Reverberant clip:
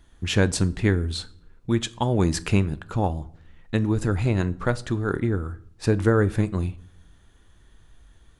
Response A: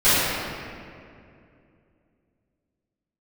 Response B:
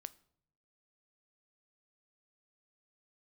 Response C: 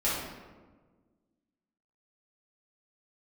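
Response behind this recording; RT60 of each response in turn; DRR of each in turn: B; 2.5 s, 0.70 s, 1.4 s; -20.0 dB, 15.0 dB, -9.5 dB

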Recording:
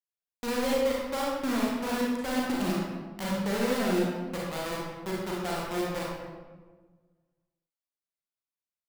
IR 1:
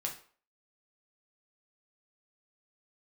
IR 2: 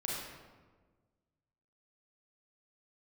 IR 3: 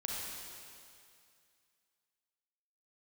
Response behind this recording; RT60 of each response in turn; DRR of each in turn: 2; 0.45 s, 1.4 s, 2.4 s; 0.0 dB, -4.5 dB, -3.5 dB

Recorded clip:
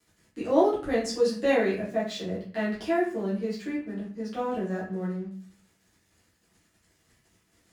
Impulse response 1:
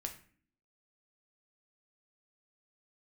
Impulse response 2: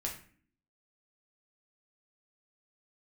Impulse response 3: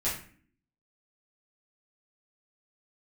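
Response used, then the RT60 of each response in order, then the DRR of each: 3; 0.45 s, 0.45 s, 0.45 s; 3.5 dB, -1.0 dB, -10.0 dB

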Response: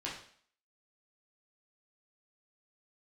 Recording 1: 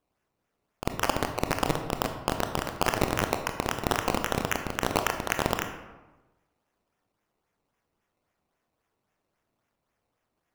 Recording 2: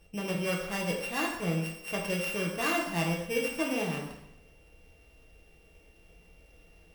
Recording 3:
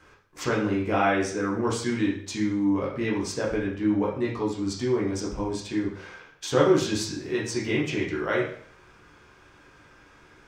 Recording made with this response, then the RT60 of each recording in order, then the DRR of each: 3; 1.1 s, 0.85 s, 0.55 s; 5.5 dB, -1.5 dB, -5.5 dB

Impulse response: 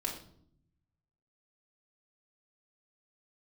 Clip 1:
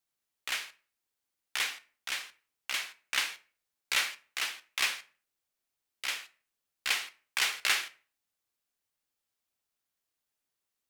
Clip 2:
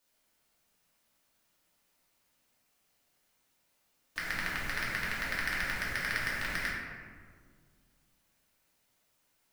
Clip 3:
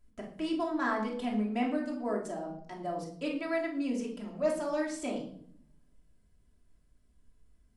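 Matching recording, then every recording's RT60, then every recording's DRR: 3; 0.45 s, 1.8 s, 0.65 s; 11.0 dB, -7.5 dB, -2.0 dB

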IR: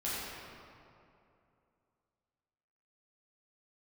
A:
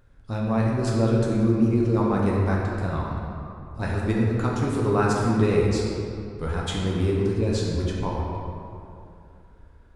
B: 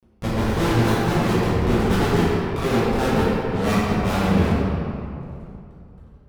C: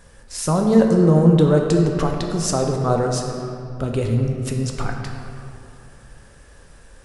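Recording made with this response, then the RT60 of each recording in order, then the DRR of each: B; 2.7 s, 2.7 s, 2.7 s; -4.0 dB, -10.0 dB, 1.5 dB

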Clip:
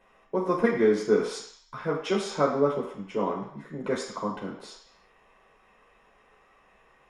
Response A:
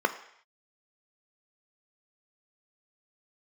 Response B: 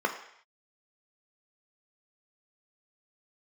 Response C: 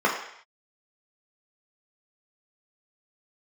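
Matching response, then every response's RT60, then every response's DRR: C; no single decay rate, no single decay rate, no single decay rate; 8.0 dB, 3.0 dB, -3.5 dB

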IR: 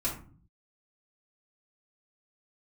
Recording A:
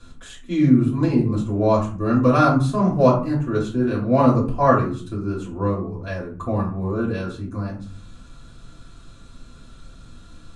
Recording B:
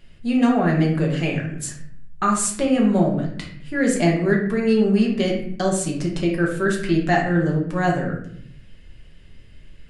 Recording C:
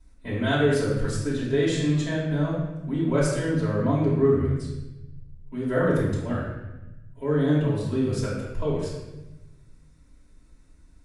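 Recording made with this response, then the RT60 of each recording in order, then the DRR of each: A; 0.45 s, 0.65 s, 1.0 s; -7.0 dB, -2.0 dB, -8.5 dB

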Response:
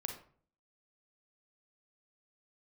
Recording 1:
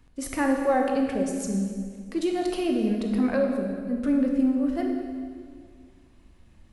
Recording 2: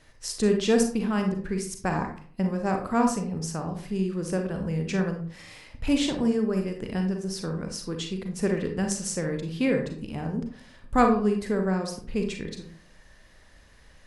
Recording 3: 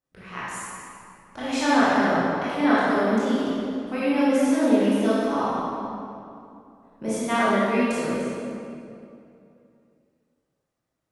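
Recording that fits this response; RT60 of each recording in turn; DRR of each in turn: 2; 2.0 s, 0.50 s, 2.6 s; 1.5 dB, 3.5 dB, -10.5 dB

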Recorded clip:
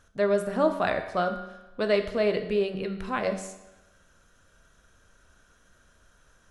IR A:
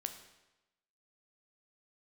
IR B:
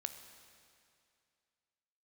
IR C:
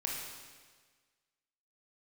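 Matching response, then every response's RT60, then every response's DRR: A; 1.0 s, 2.4 s, 1.5 s; 6.5 dB, 7.5 dB, -2.5 dB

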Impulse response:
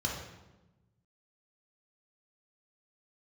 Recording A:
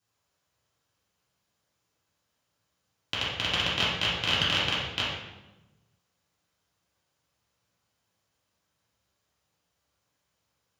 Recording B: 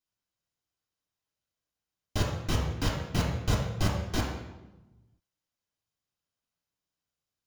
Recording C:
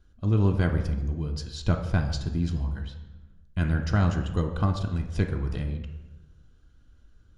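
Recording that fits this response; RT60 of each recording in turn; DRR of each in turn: B; 1.1 s, 1.1 s, 1.1 s; -10.0 dB, -3.0 dB, 4.0 dB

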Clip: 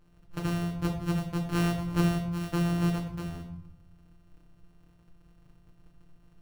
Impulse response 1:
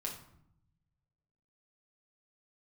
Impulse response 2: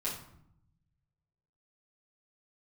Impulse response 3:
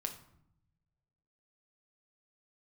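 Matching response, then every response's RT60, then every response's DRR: 1; 0.70 s, 0.70 s, 0.70 s; -2.0 dB, -8.0 dB, 3.5 dB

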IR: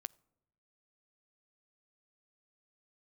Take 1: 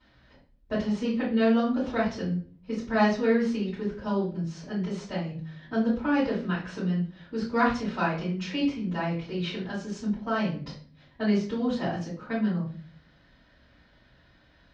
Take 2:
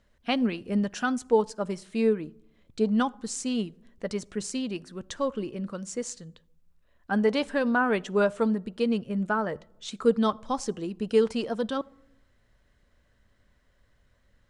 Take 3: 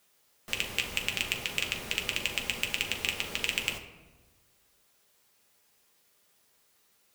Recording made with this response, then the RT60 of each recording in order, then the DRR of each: 2; 0.45 s, no single decay rate, 1.3 s; -12.0 dB, 20.0 dB, 2.5 dB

